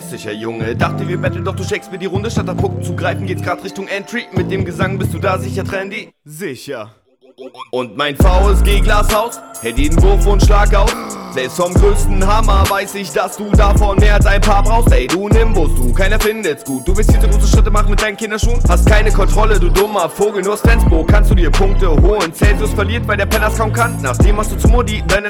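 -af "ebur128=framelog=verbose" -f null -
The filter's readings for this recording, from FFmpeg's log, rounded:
Integrated loudness:
  I:         -14.7 LUFS
  Threshold: -24.9 LUFS
Loudness range:
  LRA:         6.4 LU
  Threshold: -34.8 LUFS
  LRA low:   -19.5 LUFS
  LRA high:  -13.1 LUFS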